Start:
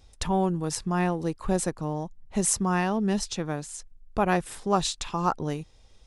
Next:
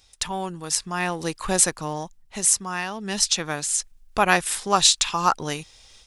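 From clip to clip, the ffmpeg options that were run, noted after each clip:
-af "tiltshelf=f=970:g=-9,dynaudnorm=f=250:g=3:m=9dB,volume=-1dB"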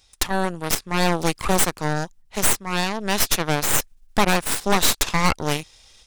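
-af "alimiter=limit=-11dB:level=0:latency=1:release=268,aeval=exprs='0.282*(cos(1*acos(clip(val(0)/0.282,-1,1)))-cos(1*PI/2))+0.141*(cos(4*acos(clip(val(0)/0.282,-1,1)))-cos(4*PI/2))+0.0447*(cos(8*acos(clip(val(0)/0.282,-1,1)))-cos(8*PI/2))':c=same"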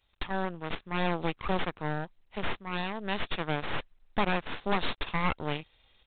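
-af "volume=-9dB" -ar 8000 -c:a adpcm_g726 -b:a 32k

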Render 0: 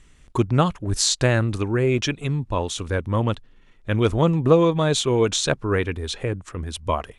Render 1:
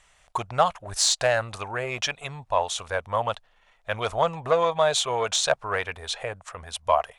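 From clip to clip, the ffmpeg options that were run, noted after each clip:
-af "acontrast=72,lowshelf=f=460:t=q:w=3:g=-13.5,volume=-7dB"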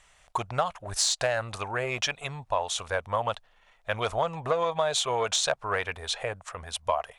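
-af "acompressor=threshold=-22dB:ratio=6"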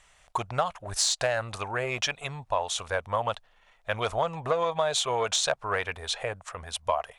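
-af anull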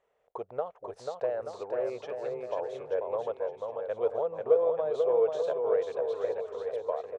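-filter_complex "[0:a]bandpass=f=460:t=q:w=5.5:csg=0,asplit=2[a][b];[b]aecho=0:1:490|882|1196|1446|1647:0.631|0.398|0.251|0.158|0.1[c];[a][c]amix=inputs=2:normalize=0,volume=6dB"

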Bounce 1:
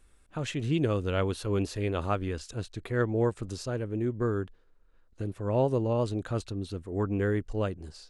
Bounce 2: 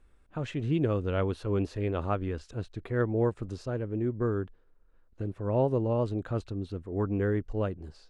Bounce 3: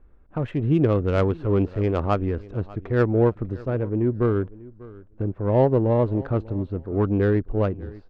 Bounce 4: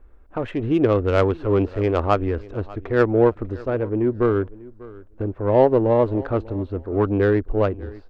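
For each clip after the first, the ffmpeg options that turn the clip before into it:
-af "lowpass=f=1.7k:p=1"
-af "adynamicsmooth=sensitivity=2:basefreq=1.4k,aecho=1:1:594|1188:0.0944|0.0151,volume=8dB"
-af "equalizer=f=150:w=1.5:g=-13.5,volume=5dB"

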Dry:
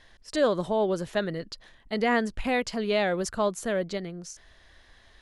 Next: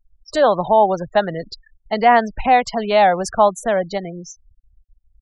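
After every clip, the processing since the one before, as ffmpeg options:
-filter_complex "[0:a]afftfilt=real='re*gte(hypot(re,im),0.0141)':imag='im*gte(hypot(re,im),0.0141)':win_size=1024:overlap=0.75,equalizer=f=790:w=2.1:g=14.5,acrossover=split=240|500|2200[a][b][c][d];[b]acompressor=threshold=-38dB:ratio=6[e];[a][e][c][d]amix=inputs=4:normalize=0,volume=6.5dB"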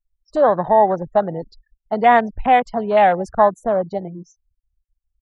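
-af "afwtdn=0.0708"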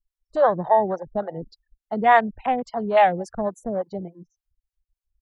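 -filter_complex "[0:a]acrossover=split=450[a][b];[a]aeval=exprs='val(0)*(1-1/2+1/2*cos(2*PI*3.5*n/s))':c=same[c];[b]aeval=exprs='val(0)*(1-1/2-1/2*cos(2*PI*3.5*n/s))':c=same[d];[c][d]amix=inputs=2:normalize=0"

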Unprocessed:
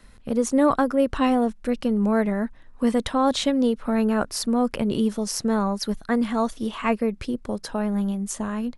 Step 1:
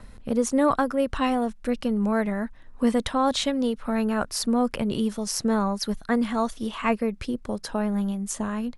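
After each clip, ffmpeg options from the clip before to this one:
-filter_complex "[0:a]adynamicequalizer=threshold=0.02:dfrequency=340:dqfactor=0.75:tfrequency=340:tqfactor=0.75:attack=5:release=100:ratio=0.375:range=3:mode=cutabove:tftype=bell,acrossover=split=880[a][b];[a]acompressor=mode=upward:threshold=-36dB:ratio=2.5[c];[c][b]amix=inputs=2:normalize=0"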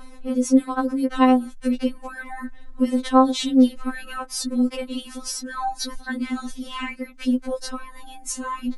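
-af "alimiter=limit=-17.5dB:level=0:latency=1:release=430,afftfilt=real='re*3.46*eq(mod(b,12),0)':imag='im*3.46*eq(mod(b,12),0)':win_size=2048:overlap=0.75,volume=6.5dB"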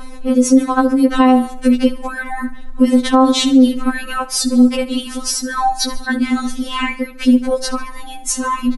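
-af "aecho=1:1:73|146|219|292:0.141|0.072|0.0367|0.0187,alimiter=level_in=11dB:limit=-1dB:release=50:level=0:latency=1,volume=-1dB"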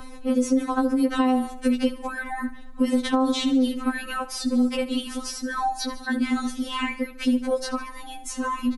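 -filter_complex "[0:a]acrossover=split=84|640|3800[a][b][c][d];[a]acompressor=threshold=-32dB:ratio=4[e];[b]acompressor=threshold=-13dB:ratio=4[f];[c]acompressor=threshold=-21dB:ratio=4[g];[d]acompressor=threshold=-31dB:ratio=4[h];[e][f][g][h]amix=inputs=4:normalize=0,volume=-6dB"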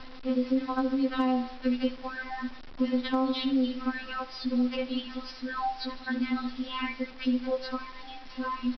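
-af "aresample=11025,acrusher=bits=6:mix=0:aa=0.000001,aresample=44100,asoftclip=type=hard:threshold=-11dB,volume=-5.5dB"

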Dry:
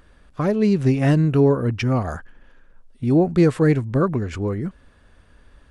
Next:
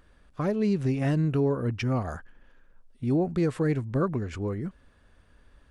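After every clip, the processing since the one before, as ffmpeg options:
-af "alimiter=limit=-10.5dB:level=0:latency=1:release=97,volume=-6.5dB"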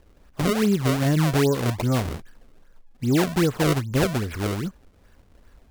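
-af "acrusher=samples=30:mix=1:aa=0.000001:lfo=1:lforange=48:lforate=2.5,volume=4.5dB"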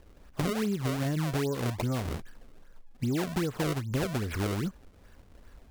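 -af "acompressor=threshold=-27dB:ratio=6"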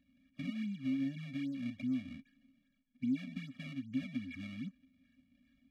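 -filter_complex "[0:a]asplit=3[a][b][c];[a]bandpass=f=270:t=q:w=8,volume=0dB[d];[b]bandpass=f=2.29k:t=q:w=8,volume=-6dB[e];[c]bandpass=f=3.01k:t=q:w=8,volume=-9dB[f];[d][e][f]amix=inputs=3:normalize=0,afftfilt=real='re*eq(mod(floor(b*sr/1024/270),2),0)':imag='im*eq(mod(floor(b*sr/1024/270),2),0)':win_size=1024:overlap=0.75,volume=4dB"

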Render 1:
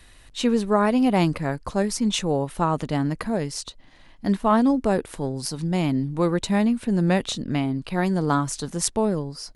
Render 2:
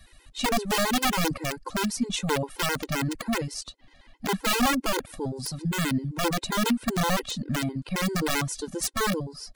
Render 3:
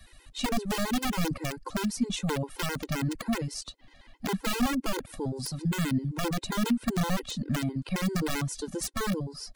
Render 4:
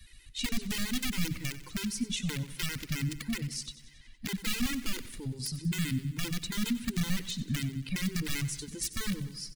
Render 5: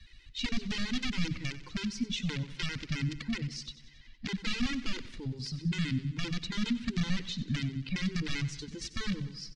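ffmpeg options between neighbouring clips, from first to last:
-af "aeval=exprs='(mod(5.31*val(0)+1,2)-1)/5.31':c=same,afftfilt=real='re*gt(sin(2*PI*7.6*pts/sr)*(1-2*mod(floor(b*sr/1024/270),2)),0)':imag='im*gt(sin(2*PI*7.6*pts/sr)*(1-2*mod(floor(b*sr/1024/270),2)),0)':win_size=1024:overlap=0.75"
-filter_complex "[0:a]acrossover=split=310[a][b];[b]acompressor=threshold=-35dB:ratio=2[c];[a][c]amix=inputs=2:normalize=0"
-af "firequalizer=gain_entry='entry(100,0);entry(630,-21);entry(2000,0)':delay=0.05:min_phase=1,aecho=1:1:93|186|279|372|465|558:0.178|0.105|0.0619|0.0365|0.0215|0.0127"
-af "lowpass=f=5.5k:w=0.5412,lowpass=f=5.5k:w=1.3066"

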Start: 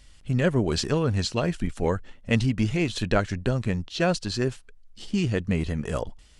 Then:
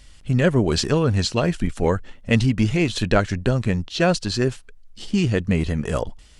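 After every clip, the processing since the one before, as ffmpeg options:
-af "acontrast=24"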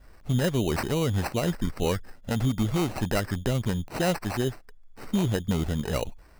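-af "adynamicequalizer=threshold=0.00631:dfrequency=6200:dqfactor=1.1:tfrequency=6200:tqfactor=1.1:attack=5:release=100:ratio=0.375:range=2:mode=cutabove:tftype=bell,alimiter=limit=-11dB:level=0:latency=1:release=104,acrusher=samples=13:mix=1:aa=0.000001,volume=-4.5dB"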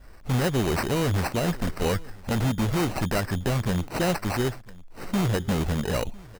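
-filter_complex "[0:a]asplit=2[a][b];[b]aeval=exprs='(mod(13.3*val(0)+1,2)-1)/13.3':c=same,volume=-5dB[c];[a][c]amix=inputs=2:normalize=0,aecho=1:1:1001:0.0708"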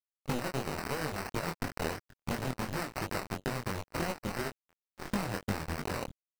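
-af "acompressor=threshold=-35dB:ratio=4,acrusher=bits=4:mix=0:aa=0.5,flanger=delay=19.5:depth=5.9:speed=2.9,volume=6.5dB"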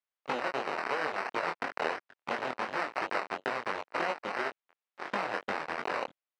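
-af "highpass=540,lowpass=2.8k,volume=6.5dB"

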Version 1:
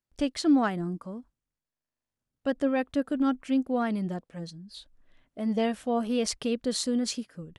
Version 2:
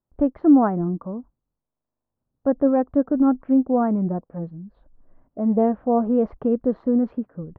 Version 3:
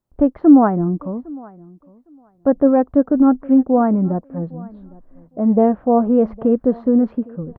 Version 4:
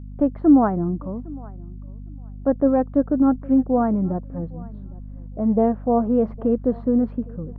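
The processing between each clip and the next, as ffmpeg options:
-af "lowpass=f=1.1k:w=0.5412,lowpass=f=1.1k:w=1.3066,volume=8dB"
-af "aecho=1:1:808|1616:0.0708|0.012,volume=5dB"
-af "aeval=exprs='val(0)+0.0316*(sin(2*PI*50*n/s)+sin(2*PI*2*50*n/s)/2+sin(2*PI*3*50*n/s)/3+sin(2*PI*4*50*n/s)/4+sin(2*PI*5*50*n/s)/5)':c=same,volume=-4.5dB"

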